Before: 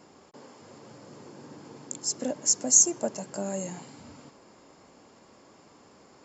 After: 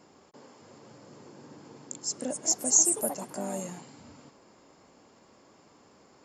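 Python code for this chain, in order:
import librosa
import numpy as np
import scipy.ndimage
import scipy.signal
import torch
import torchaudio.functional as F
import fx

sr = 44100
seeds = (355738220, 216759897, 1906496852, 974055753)

y = fx.echo_pitch(x, sr, ms=323, semitones=4, count=2, db_per_echo=-6.0, at=(1.78, 3.93))
y = y * librosa.db_to_amplitude(-3.0)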